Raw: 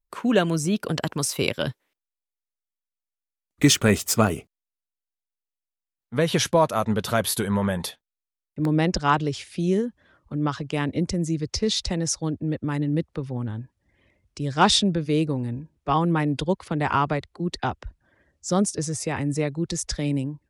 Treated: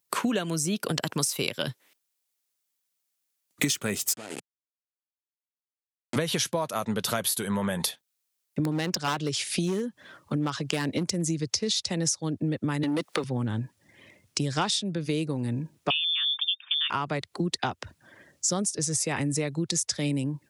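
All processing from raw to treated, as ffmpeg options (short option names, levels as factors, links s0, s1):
-filter_complex "[0:a]asettb=1/sr,asplit=3[s0][s1][s2];[s0]atrim=end=4.134[s3];[s1]atrim=start=4.13:end=6.16,asetpts=PTS-STARTPTS,afade=t=in:d=0.004:c=qsin,afade=t=out:st=2.026:d=0.004:c=qsin,acompressor=threshold=0.0398:ratio=4:attack=3.2:release=140:knee=1:detection=peak,aeval=exprs='val(0)*gte(abs(val(0)),0.0251)':c=same,highpass=170,equalizer=f=180:t=q:w=4:g=-10,equalizer=f=1100:t=q:w=4:g=-9,equalizer=f=3800:t=q:w=4:g=-4,equalizer=f=5800:t=q:w=4:g=-7,lowpass=f=9000:w=0.5412,lowpass=f=9000:w=1.3066[s4];[s2]atrim=start=6.156[s5];[s3][s4]acrossfade=d=0.004:c1=hsin:c2=qsin[s6];[s6][s5]acrossfade=d=0.004:c1=qsin:c2=hsin,asettb=1/sr,asplit=3[s7][s8][s9];[s7]atrim=end=8.714[s10];[s8]atrim=start=8.71:end=11.27,asetpts=PTS-STARTPTS,afade=t=in:d=0.004:c=qsin,afade=t=out:st=2.556:d=0.004:c=qsin,lowshelf=f=280:g=-2.5,volume=8.41,asoftclip=hard,volume=0.119[s11];[s9]atrim=start=11.266[s12];[s10][s11]acrossfade=d=0.004:c1=hsin:c2=qsin[s13];[s13][s12]acrossfade=d=0.004:c1=qsin:c2=hsin,asettb=1/sr,asplit=3[s14][s15][s16];[s14]atrim=end=12.834[s17];[s15]atrim=start=12.83:end=13.24,asetpts=PTS-STARTPTS,afade=t=in:d=0.004:c=qsin,afade=t=out:st=0.406:d=0.004:c=qsin,highpass=190,highshelf=f=11000:g=10.5,asplit=2[s18][s19];[s19]highpass=f=720:p=1,volume=11.2,asoftclip=type=tanh:threshold=0.211[s20];[s18][s20]amix=inputs=2:normalize=0,lowpass=f=5600:p=1,volume=0.501[s21];[s16]atrim=start=13.236[s22];[s17][s21]acrossfade=d=0.004:c1=hsin:c2=qsin[s23];[s23][s22]acrossfade=d=0.004:c1=qsin:c2=hsin,asettb=1/sr,asplit=3[s24][s25][s26];[s24]atrim=end=15.904[s27];[s25]atrim=start=15.9:end=16.9,asetpts=PTS-STARTPTS,afade=t=in:d=0.004:c=qsin,afade=t=out:st=0.996:d=0.004:c=qsin,lowpass=f=3100:t=q:w=0.5098,lowpass=f=3100:t=q:w=0.6013,lowpass=f=3100:t=q:w=0.9,lowpass=f=3100:t=q:w=2.563,afreqshift=-3700,highpass=f=1100:w=0.5412,highpass=f=1100:w=1.3066,equalizer=f=2100:t=o:w=0.21:g=-11.5[s28];[s26]atrim=start=16.896[s29];[s27][s28]acrossfade=d=0.004:c1=hsin:c2=qsin[s30];[s30][s29]acrossfade=d=0.004:c1=qsin:c2=hsin,highpass=f=110:w=0.5412,highpass=f=110:w=1.3066,highshelf=f=3000:g=10,acompressor=threshold=0.0251:ratio=16,volume=2.51"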